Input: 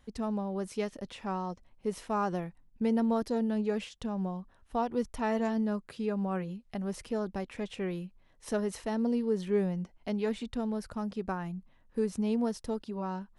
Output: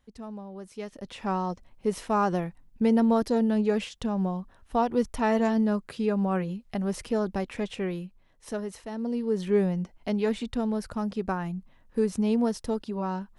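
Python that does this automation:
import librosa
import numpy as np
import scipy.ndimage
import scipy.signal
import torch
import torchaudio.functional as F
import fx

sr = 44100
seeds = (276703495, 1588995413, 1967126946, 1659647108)

y = fx.gain(x, sr, db=fx.line((0.71, -6.5), (1.26, 6.0), (7.56, 6.0), (8.89, -4.0), (9.47, 5.0)))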